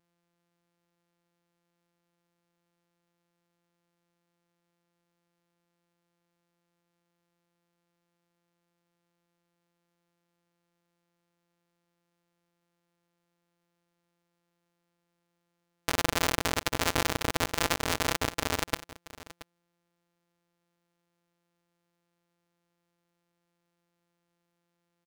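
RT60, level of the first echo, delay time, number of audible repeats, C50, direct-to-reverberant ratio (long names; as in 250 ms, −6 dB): no reverb audible, −17.5 dB, 677 ms, 1, no reverb audible, no reverb audible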